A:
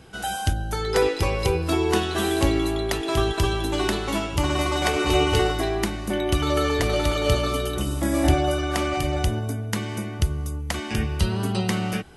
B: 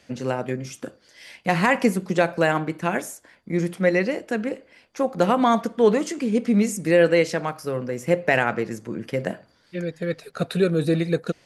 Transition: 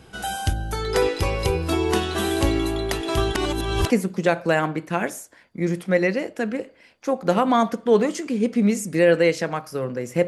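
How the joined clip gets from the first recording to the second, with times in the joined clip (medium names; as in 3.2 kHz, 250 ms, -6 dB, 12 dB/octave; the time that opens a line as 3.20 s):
A
3.35–3.90 s: reverse
3.90 s: go over to B from 1.82 s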